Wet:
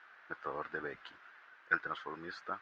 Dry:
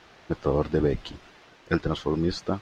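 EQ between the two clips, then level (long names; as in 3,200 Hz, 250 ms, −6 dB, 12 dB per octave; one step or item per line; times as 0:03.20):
resonant band-pass 1,500 Hz, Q 3.7
+2.0 dB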